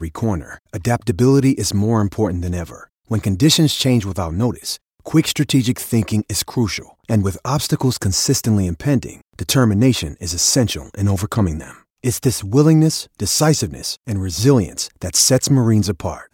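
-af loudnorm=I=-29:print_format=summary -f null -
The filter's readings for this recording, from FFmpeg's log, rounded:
Input Integrated:    -17.5 LUFS
Input True Peak:      -1.3 dBTP
Input LRA:             1.9 LU
Input Threshold:     -27.6 LUFS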